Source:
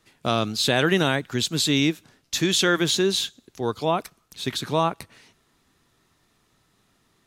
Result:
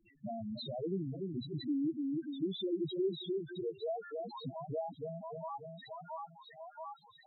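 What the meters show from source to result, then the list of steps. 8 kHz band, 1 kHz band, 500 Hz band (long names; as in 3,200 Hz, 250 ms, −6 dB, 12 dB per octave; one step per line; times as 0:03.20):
below −40 dB, −16.0 dB, −12.0 dB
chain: high-shelf EQ 7,400 Hz −11 dB
on a send: echo with a time of its own for lows and highs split 680 Hz, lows 293 ms, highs 680 ms, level −6 dB
on the sum: dynamic equaliser 1,400 Hz, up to −5 dB, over −38 dBFS, Q 2.1
downward compressor 2.5 to 1, threshold −42 dBFS, peak gain reduction 17 dB
pitch vibrato 2.4 Hz 5.8 cents
spectral peaks only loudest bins 2
level +6 dB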